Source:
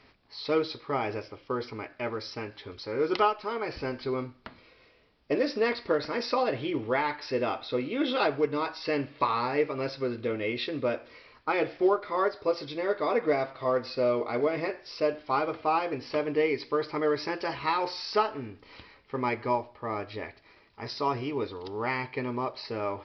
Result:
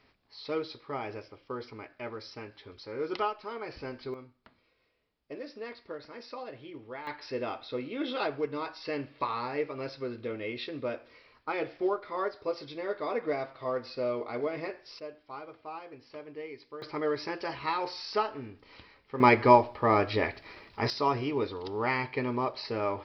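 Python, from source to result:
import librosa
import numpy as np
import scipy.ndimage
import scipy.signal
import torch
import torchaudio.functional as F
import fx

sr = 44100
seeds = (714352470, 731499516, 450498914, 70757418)

y = fx.gain(x, sr, db=fx.steps((0.0, -6.5), (4.14, -14.5), (7.07, -5.5), (14.99, -15.5), (16.82, -3.5), (19.2, 9.0), (20.9, 1.0)))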